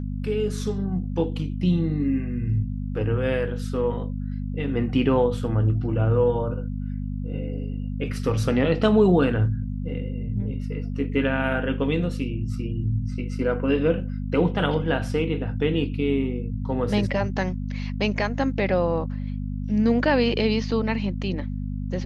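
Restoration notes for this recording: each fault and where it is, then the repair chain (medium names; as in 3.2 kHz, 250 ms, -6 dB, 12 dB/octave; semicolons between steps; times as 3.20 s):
hum 50 Hz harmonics 5 -29 dBFS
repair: de-hum 50 Hz, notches 5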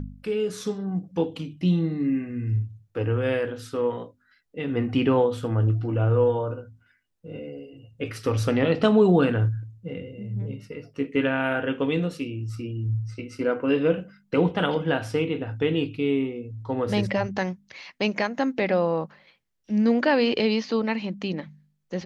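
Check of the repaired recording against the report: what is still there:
nothing left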